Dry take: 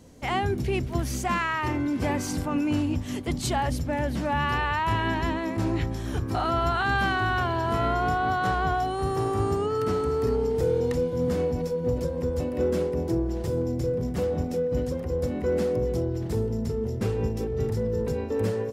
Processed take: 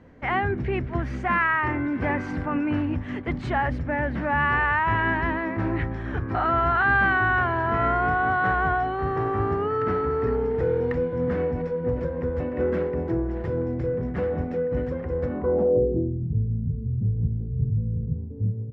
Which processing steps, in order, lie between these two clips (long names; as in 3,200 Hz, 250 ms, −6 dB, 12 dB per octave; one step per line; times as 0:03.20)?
low-pass filter sweep 1,800 Hz → 140 Hz, 0:15.23–0:16.34